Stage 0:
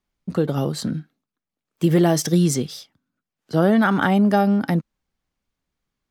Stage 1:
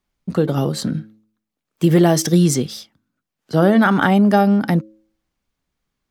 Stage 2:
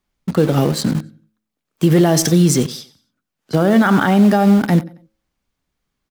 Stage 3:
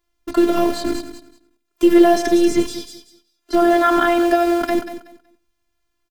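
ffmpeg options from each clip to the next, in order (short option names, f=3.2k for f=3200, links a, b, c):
-af "bandreject=f=108:t=h:w=4,bandreject=f=216:t=h:w=4,bandreject=f=324:t=h:w=4,bandreject=f=432:t=h:w=4,bandreject=f=540:t=h:w=4,volume=3.5dB"
-filter_complex "[0:a]aecho=1:1:91|182|273:0.133|0.044|0.0145,asplit=2[a][b];[b]acrusher=bits=3:mix=0:aa=0.000001,volume=-9.5dB[c];[a][c]amix=inputs=2:normalize=0,alimiter=level_in=5dB:limit=-1dB:release=50:level=0:latency=1,volume=-3.5dB"
-filter_complex "[0:a]afftfilt=real='hypot(re,im)*cos(PI*b)':imag='0':win_size=512:overlap=0.75,aecho=1:1:187|374|561:0.237|0.0522|0.0115,acrossover=split=3200[a][b];[b]acompressor=threshold=-34dB:ratio=4:attack=1:release=60[c];[a][c]amix=inputs=2:normalize=0,volume=5dB"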